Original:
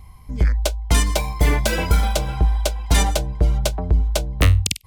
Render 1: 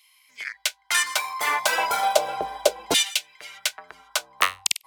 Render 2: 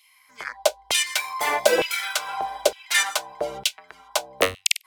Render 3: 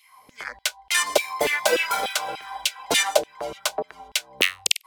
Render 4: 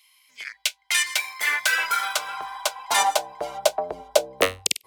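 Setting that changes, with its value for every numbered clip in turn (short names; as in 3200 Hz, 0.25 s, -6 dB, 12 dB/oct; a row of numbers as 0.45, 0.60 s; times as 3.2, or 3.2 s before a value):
LFO high-pass, rate: 0.34, 1.1, 3.4, 0.2 Hz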